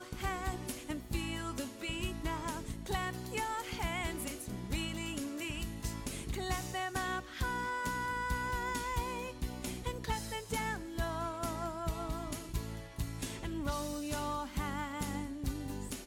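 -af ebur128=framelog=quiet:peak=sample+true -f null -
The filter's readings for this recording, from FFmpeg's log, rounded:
Integrated loudness:
  I:         -38.2 LUFS
  Threshold: -48.2 LUFS
Loudness range:
  LRA:         2.2 LU
  Threshold: -58.0 LUFS
  LRA low:   -39.0 LUFS
  LRA high:  -36.8 LUFS
Sample peak:
  Peak:      -22.9 dBFS
True peak:
  Peak:      -22.8 dBFS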